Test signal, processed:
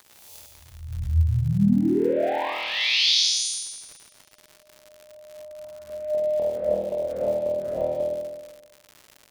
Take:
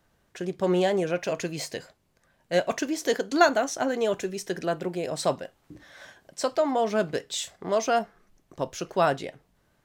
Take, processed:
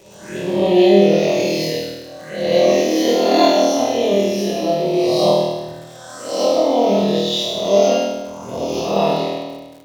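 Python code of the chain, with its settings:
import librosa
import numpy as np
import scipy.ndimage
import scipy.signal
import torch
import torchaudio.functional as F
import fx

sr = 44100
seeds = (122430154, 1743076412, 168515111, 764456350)

p1 = fx.spec_swells(x, sr, rise_s=1.11)
p2 = scipy.signal.sosfilt(scipy.signal.butter(2, 41.0, 'highpass', fs=sr, output='sos'), p1)
p3 = fx.rider(p2, sr, range_db=4, speed_s=2.0)
p4 = p2 + (p3 * librosa.db_to_amplitude(-3.0))
p5 = fx.env_phaser(p4, sr, low_hz=230.0, high_hz=1500.0, full_db=-21.5)
p6 = p5 + fx.room_flutter(p5, sr, wall_m=4.3, rt60_s=1.1, dry=0)
p7 = fx.rev_double_slope(p6, sr, seeds[0], early_s=0.93, late_s=2.9, knee_db=-27, drr_db=5.0)
p8 = fx.dmg_crackle(p7, sr, seeds[1], per_s=150.0, level_db=-32.0)
y = p8 * librosa.db_to_amplitude(-2.5)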